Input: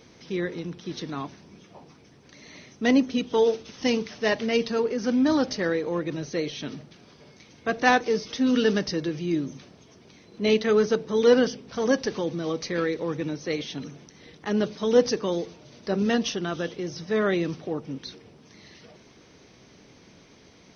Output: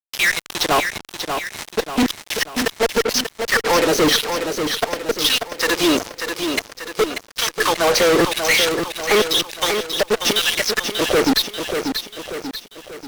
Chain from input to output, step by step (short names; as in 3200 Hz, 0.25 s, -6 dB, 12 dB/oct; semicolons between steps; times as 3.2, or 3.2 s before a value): flipped gate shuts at -15 dBFS, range -36 dB; time stretch by phase-locked vocoder 0.63×; LFO high-pass saw down 0.97 Hz 270–4300 Hz; fuzz box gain 47 dB, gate -43 dBFS; lo-fi delay 0.588 s, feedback 55%, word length 7-bit, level -6.5 dB